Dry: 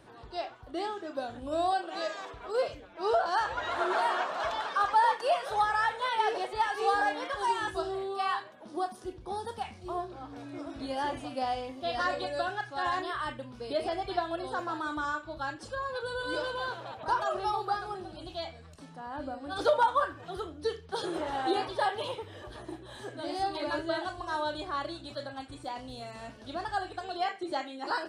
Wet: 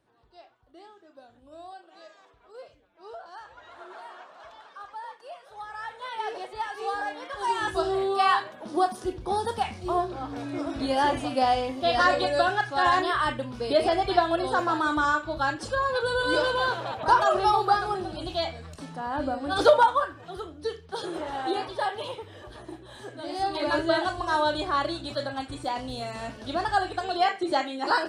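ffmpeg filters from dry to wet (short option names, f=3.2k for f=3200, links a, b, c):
-af "volume=16.5dB,afade=t=in:st=5.54:d=0.77:silence=0.251189,afade=t=in:st=7.28:d=0.76:silence=0.237137,afade=t=out:st=19.6:d=0.45:silence=0.375837,afade=t=in:st=23.28:d=0.55:silence=0.421697"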